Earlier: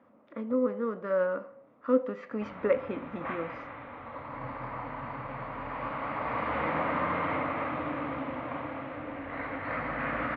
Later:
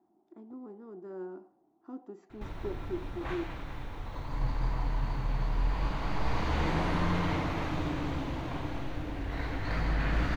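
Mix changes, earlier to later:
speech: add pair of resonant band-passes 510 Hz, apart 1.1 octaves
master: remove loudspeaker in its box 170–2,600 Hz, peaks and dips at 180 Hz −9 dB, 250 Hz +6 dB, 370 Hz −10 dB, 550 Hz +9 dB, 1,200 Hz +9 dB, 2,100 Hz +5 dB

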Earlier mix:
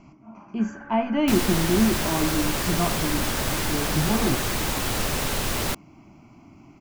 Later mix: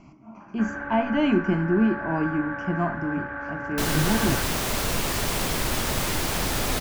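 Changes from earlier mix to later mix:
first sound +10.0 dB
second sound: entry +2.50 s

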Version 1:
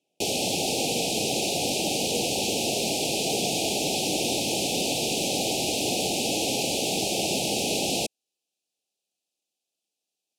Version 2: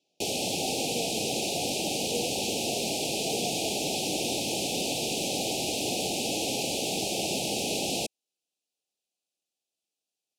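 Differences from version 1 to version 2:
speech: remove Savitzky-Golay smoothing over 25 samples
background −3.5 dB

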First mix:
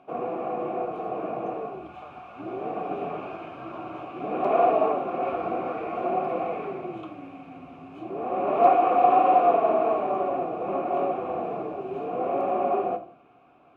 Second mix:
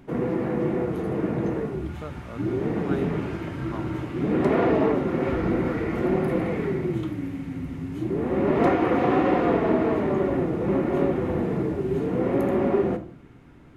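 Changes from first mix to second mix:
background −11.0 dB
master: remove formant filter a

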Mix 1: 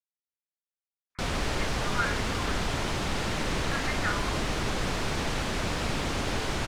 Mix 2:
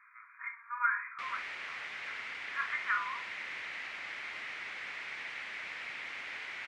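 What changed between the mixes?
speech: entry −1.15 s
background: add resonant band-pass 2,100 Hz, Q 4.1

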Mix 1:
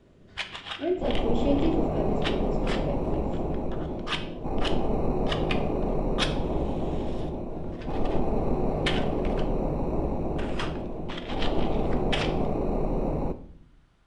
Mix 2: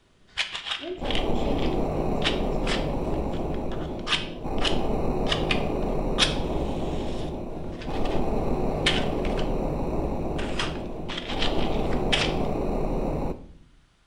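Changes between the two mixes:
speech −8.0 dB
master: add high-shelf EQ 2,100 Hz +10 dB

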